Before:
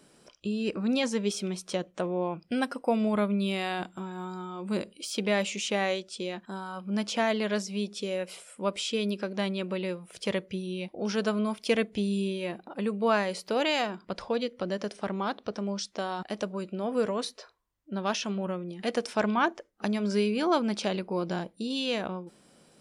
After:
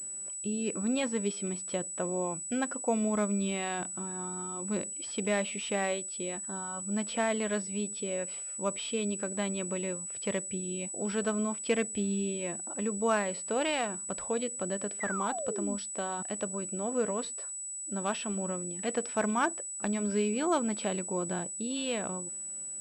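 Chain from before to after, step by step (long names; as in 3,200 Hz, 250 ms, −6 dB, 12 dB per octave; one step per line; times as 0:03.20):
tape wow and flutter 17 cents
sound drawn into the spectrogram fall, 0:15.00–0:15.76, 220–2,100 Hz −34 dBFS
switching amplifier with a slow clock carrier 7,900 Hz
level −3 dB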